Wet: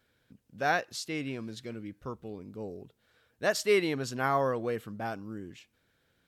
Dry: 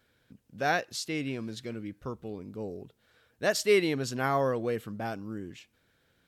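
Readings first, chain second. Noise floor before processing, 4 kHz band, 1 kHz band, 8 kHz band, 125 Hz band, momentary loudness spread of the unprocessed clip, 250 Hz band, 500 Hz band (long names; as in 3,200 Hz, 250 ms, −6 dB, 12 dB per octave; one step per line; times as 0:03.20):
−71 dBFS, −2.0 dB, +0.5 dB, −2.5 dB, −2.5 dB, 16 LU, −2.0 dB, −1.5 dB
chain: dynamic equaliser 1,100 Hz, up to +4 dB, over −42 dBFS, Q 0.94
level −2.5 dB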